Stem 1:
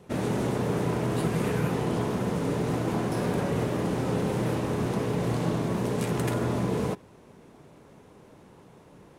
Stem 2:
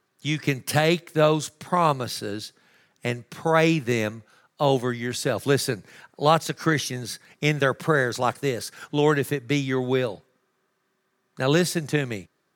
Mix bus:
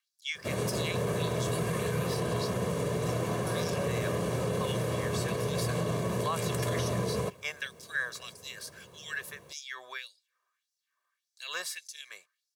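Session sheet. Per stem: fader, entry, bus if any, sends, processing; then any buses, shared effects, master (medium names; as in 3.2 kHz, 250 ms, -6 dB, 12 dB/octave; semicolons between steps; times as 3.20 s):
-3.0 dB, 0.35 s, no send, high-pass 68 Hz 24 dB/octave; band-stop 5.2 kHz, Q 14; bit crusher 12-bit
-14.0 dB, 0.00 s, no send, LFO high-pass sine 1.7 Hz 900–5400 Hz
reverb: none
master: treble shelf 4.2 kHz +6 dB; comb 1.8 ms, depth 62%; peak limiter -21.5 dBFS, peak gain reduction 7 dB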